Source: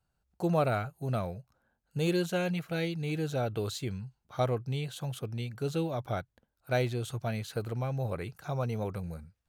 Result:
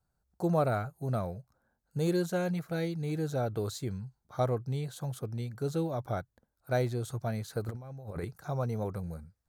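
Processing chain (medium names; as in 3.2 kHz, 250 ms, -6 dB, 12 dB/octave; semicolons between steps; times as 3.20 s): 7.68–8.25 s: compressor with a negative ratio -38 dBFS, ratio -0.5; peaking EQ 2.8 kHz -13 dB 0.7 oct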